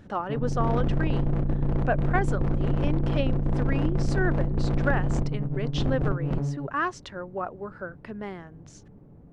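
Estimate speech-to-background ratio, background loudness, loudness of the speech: -4.5 dB, -28.0 LUFS, -32.5 LUFS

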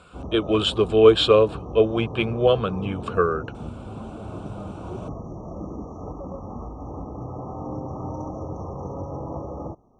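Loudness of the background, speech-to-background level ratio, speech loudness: -35.0 LUFS, 14.5 dB, -20.5 LUFS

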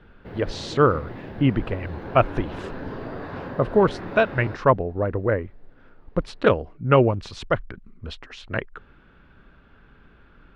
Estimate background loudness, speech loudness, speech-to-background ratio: -36.0 LUFS, -23.5 LUFS, 12.5 dB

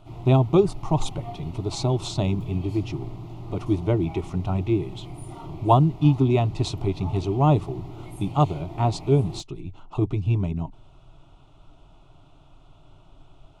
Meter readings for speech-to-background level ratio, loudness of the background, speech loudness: 15.0 dB, -39.0 LUFS, -24.0 LUFS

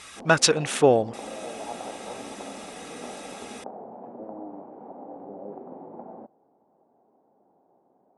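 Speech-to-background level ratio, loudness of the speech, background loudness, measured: 19.5 dB, -21.0 LUFS, -40.5 LUFS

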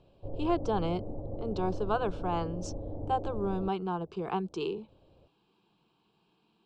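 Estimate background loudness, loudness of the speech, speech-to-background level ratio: -41.0 LUFS, -33.5 LUFS, 7.5 dB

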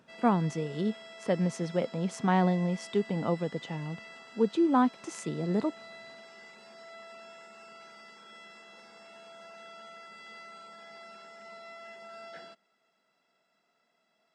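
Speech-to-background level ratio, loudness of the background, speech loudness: 18.0 dB, -48.0 LUFS, -30.0 LUFS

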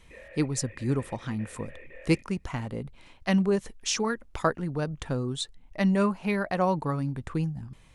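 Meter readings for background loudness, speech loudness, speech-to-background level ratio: -49.0 LUFS, -29.5 LUFS, 19.5 dB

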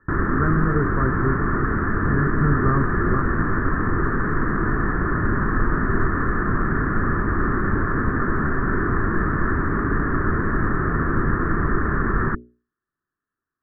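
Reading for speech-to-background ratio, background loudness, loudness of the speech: -3.0 dB, -22.5 LUFS, -25.5 LUFS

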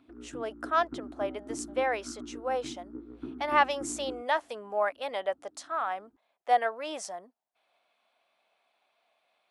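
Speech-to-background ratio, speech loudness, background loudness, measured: 12.0 dB, -31.5 LUFS, -43.5 LUFS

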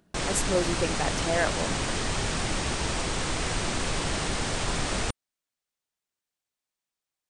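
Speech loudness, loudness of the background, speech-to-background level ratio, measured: -30.0 LUFS, -29.0 LUFS, -1.0 dB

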